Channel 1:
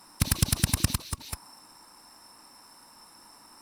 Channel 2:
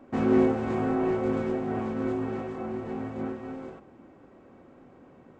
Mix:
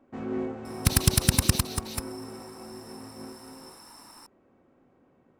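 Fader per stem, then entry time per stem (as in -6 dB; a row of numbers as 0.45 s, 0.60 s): +3.0 dB, -10.0 dB; 0.65 s, 0.00 s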